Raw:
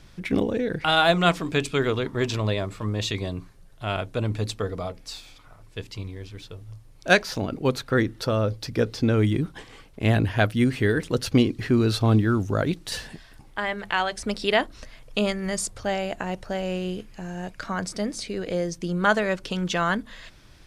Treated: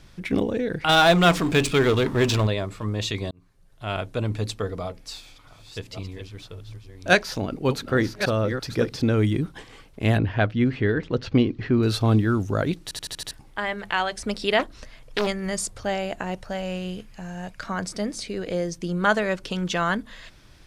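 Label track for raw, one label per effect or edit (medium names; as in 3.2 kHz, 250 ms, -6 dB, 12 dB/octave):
0.890000	2.470000	power-law waveshaper exponent 0.7
3.310000	3.990000	fade in
4.860000	9.100000	chunks repeated in reverse 566 ms, level -8 dB
10.180000	11.830000	distance through air 200 m
12.830000	12.830000	stutter in place 0.08 s, 6 plays
14.590000	15.270000	loudspeaker Doppler distortion depth 0.82 ms
16.380000	17.660000	peaking EQ 350 Hz -6.5 dB 0.7 oct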